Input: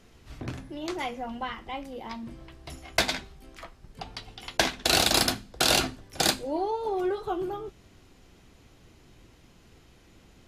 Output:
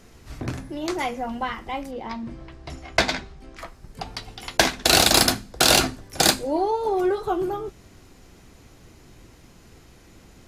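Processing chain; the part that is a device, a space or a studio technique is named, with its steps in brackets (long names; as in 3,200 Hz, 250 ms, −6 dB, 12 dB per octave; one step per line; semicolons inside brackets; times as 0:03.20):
0:01.91–0:03.59: high-frequency loss of the air 87 metres
exciter from parts (in parallel at −7 dB: high-pass filter 2,900 Hz 24 dB per octave + soft clipping −27 dBFS, distortion −6 dB)
on the sum: level +6 dB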